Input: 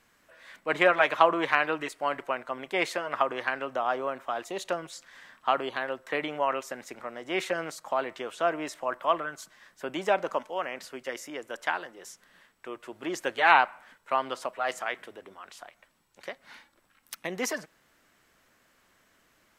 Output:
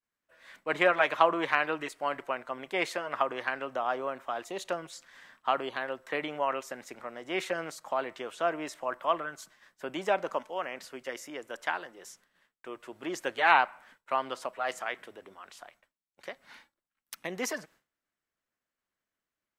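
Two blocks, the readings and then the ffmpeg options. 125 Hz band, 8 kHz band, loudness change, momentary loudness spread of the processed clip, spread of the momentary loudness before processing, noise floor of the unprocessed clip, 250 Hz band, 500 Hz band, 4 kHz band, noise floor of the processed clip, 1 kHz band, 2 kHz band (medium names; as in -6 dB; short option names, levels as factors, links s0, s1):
-2.5 dB, -2.5 dB, -2.5 dB, 21 LU, 21 LU, -67 dBFS, -2.5 dB, -2.5 dB, -2.5 dB, under -85 dBFS, -2.5 dB, -2.5 dB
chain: -af "agate=range=0.0224:threshold=0.00282:ratio=3:detection=peak,volume=0.75"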